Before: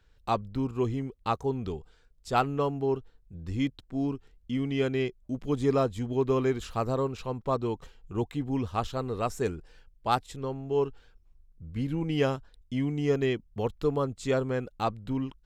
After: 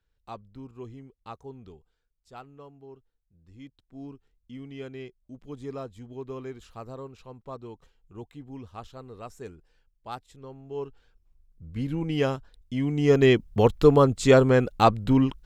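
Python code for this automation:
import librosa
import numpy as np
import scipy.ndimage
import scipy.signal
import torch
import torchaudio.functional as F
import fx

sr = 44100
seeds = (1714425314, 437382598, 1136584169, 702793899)

y = fx.gain(x, sr, db=fx.line((1.61, -13.0), (2.4, -19.5), (3.5, -19.5), (4.03, -11.5), (10.27, -11.5), (11.86, 1.0), (12.76, 1.0), (13.35, 10.5)))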